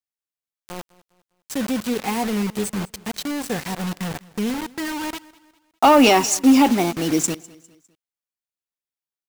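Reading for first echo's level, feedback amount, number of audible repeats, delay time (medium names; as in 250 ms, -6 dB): -22.0 dB, 42%, 2, 202 ms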